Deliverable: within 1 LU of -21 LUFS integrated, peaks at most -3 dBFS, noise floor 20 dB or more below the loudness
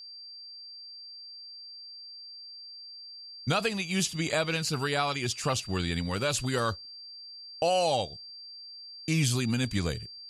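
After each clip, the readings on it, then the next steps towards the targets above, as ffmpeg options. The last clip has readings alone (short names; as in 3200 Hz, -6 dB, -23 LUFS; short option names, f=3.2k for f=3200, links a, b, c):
steady tone 4700 Hz; tone level -43 dBFS; loudness -29.0 LUFS; peak -14.0 dBFS; loudness target -21.0 LUFS
-> -af "bandreject=f=4.7k:w=30"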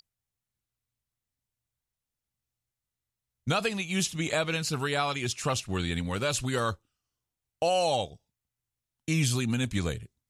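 steady tone none; loudness -29.0 LUFS; peak -14.0 dBFS; loudness target -21.0 LUFS
-> -af "volume=8dB"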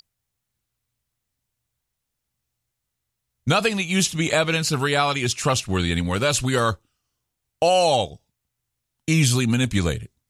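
loudness -21.0 LUFS; peak -6.0 dBFS; noise floor -81 dBFS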